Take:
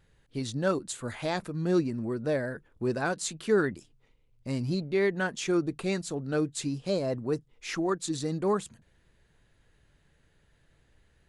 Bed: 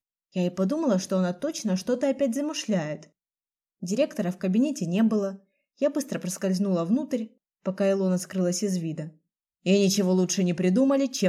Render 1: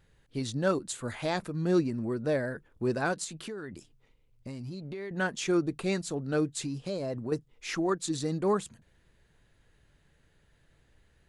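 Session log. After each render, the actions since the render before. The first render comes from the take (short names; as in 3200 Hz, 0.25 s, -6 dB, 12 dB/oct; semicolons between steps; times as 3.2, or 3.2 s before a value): 3.24–5.11 compressor 16:1, threshold -35 dBFS; 6.57–7.32 compressor 4:1, threshold -30 dBFS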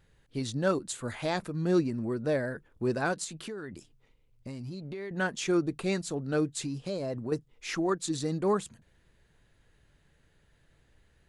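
nothing audible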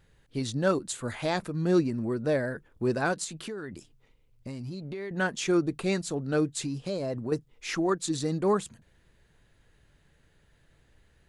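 gain +2 dB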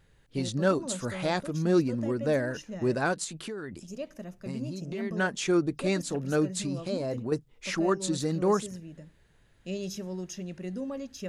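add bed -14 dB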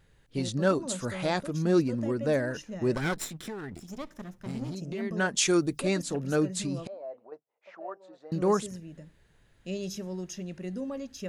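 2.95–4.75 minimum comb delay 0.55 ms; 5.36–5.8 high shelf 2700 Hz -> 4800 Hz +12 dB; 6.87–8.32 ladder band-pass 770 Hz, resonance 55%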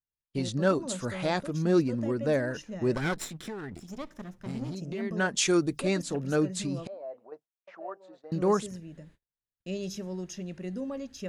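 gate -55 dBFS, range -40 dB; high shelf 9900 Hz -6 dB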